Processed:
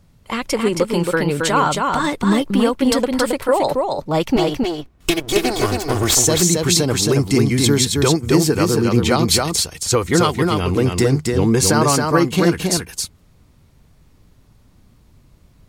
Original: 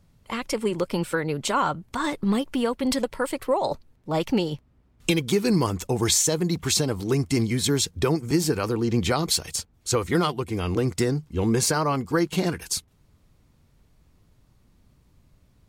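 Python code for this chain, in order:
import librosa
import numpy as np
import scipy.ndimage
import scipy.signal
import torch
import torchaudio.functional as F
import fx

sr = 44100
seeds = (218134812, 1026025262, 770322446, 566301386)

p1 = fx.lower_of_two(x, sr, delay_ms=2.7, at=(4.36, 6.15))
p2 = p1 + fx.echo_single(p1, sr, ms=271, db=-3.5, dry=0)
y = p2 * 10.0 ** (6.5 / 20.0)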